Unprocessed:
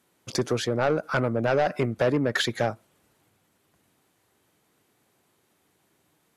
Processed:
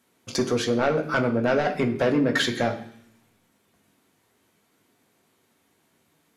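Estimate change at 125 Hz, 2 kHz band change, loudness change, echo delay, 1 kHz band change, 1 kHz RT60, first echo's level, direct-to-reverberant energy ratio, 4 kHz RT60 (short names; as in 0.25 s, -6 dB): -1.0 dB, +2.5 dB, +2.0 dB, none, +1.0 dB, 0.70 s, none, 2.0 dB, 0.90 s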